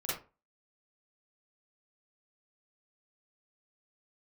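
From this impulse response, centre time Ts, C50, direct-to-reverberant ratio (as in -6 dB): 52 ms, 0.0 dB, -9.0 dB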